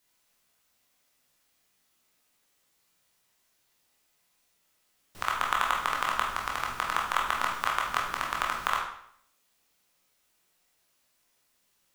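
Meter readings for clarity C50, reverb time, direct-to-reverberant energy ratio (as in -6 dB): 4.0 dB, 0.65 s, -2.5 dB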